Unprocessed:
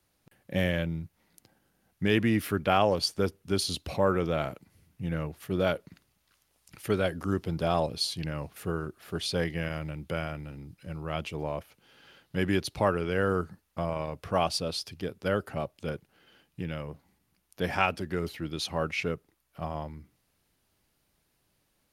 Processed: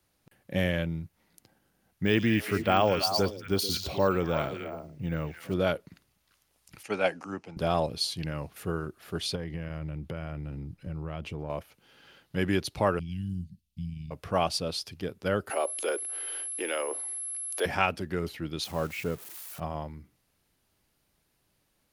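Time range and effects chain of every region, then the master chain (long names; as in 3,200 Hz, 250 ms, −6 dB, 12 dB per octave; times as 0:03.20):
0:02.04–0:05.54: echo through a band-pass that steps 110 ms, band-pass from 5,800 Hz, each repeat −1.4 octaves, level −0.5 dB + bad sample-rate conversion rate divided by 2×, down filtered, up hold
0:06.83–0:07.57: loudspeaker in its box 260–8,800 Hz, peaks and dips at 380 Hz −6 dB, 820 Hz +9 dB, 2,500 Hz +8 dB, 3,500 Hz −7 dB, 6,200 Hz +5 dB + multiband upward and downward expander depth 100%
0:09.35–0:11.50: spectral tilt −2 dB per octave + downward compressor 4 to 1, threshold −32 dBFS
0:12.99–0:14.11: inverse Chebyshev band-stop filter 490–1,300 Hz, stop band 60 dB + parametric band 12,000 Hz −10 dB 3 octaves
0:15.49–0:17.65: Butterworth high-pass 350 Hz + steady tone 11,000 Hz −48 dBFS + envelope flattener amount 50%
0:18.64–0:19.60: spike at every zero crossing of −26.5 dBFS + high-shelf EQ 2,300 Hz −11.5 dB
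whole clip: no processing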